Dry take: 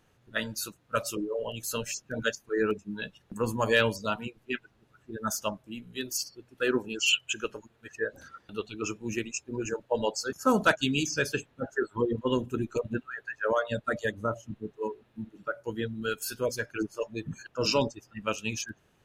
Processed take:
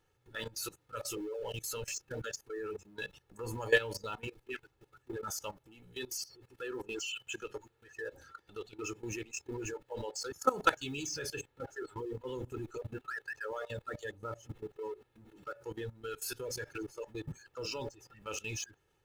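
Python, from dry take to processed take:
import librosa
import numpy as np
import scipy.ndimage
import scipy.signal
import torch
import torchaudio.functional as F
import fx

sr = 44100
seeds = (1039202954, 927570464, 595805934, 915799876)

y = fx.law_mismatch(x, sr, coded='mu')
y = y + 0.67 * np.pad(y, (int(2.3 * sr / 1000.0), 0))[:len(y)]
y = fx.level_steps(y, sr, step_db=18)
y = F.gain(torch.from_numpy(y), -3.0).numpy()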